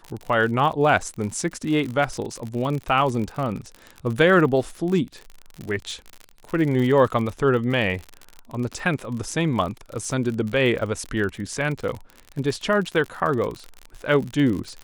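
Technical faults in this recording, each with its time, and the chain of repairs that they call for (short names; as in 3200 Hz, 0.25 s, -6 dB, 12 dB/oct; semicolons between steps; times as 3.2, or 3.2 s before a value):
crackle 51/s -28 dBFS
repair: de-click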